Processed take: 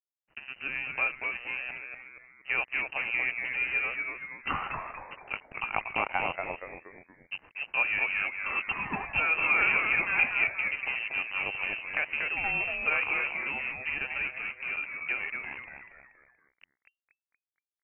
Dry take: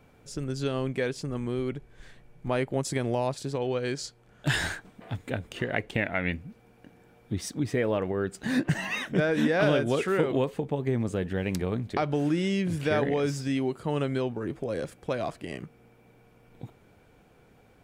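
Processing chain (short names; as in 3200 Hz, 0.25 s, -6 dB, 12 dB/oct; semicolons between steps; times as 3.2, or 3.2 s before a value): low shelf 330 Hz -12 dB; small resonant body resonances 200/490/1100/2100 Hz, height 8 dB; crossover distortion -38 dBFS; frequency-shifting echo 0.236 s, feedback 43%, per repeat +130 Hz, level -5 dB; inverted band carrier 2900 Hz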